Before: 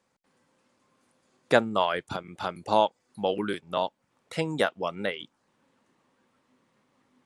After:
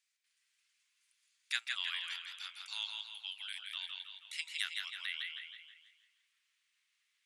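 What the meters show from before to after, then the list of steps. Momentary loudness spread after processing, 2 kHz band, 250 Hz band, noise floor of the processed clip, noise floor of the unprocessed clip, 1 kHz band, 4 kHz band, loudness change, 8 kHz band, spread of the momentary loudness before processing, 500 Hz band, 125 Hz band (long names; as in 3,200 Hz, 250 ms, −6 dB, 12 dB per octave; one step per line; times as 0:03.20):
9 LU, −7.0 dB, below −40 dB, −81 dBFS, −74 dBFS, −27.5 dB, −0.5 dB, −11.5 dB, −1.5 dB, 11 LU, below −40 dB, below −40 dB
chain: inverse Chebyshev high-pass filter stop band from 480 Hz, stop band 70 dB
bucket-brigade delay 158 ms, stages 4,096, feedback 44%, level −5 dB
feedback echo with a swinging delay time 167 ms, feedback 38%, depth 74 cents, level −7 dB
level −2.5 dB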